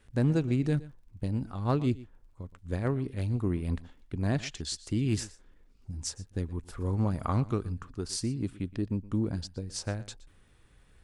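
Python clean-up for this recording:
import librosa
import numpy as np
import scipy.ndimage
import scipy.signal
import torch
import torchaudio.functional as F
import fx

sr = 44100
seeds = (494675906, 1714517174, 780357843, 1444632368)

y = fx.fix_declip(x, sr, threshold_db=-18.0)
y = fx.fix_declick_ar(y, sr, threshold=6.5)
y = fx.fix_echo_inverse(y, sr, delay_ms=119, level_db=-19.0)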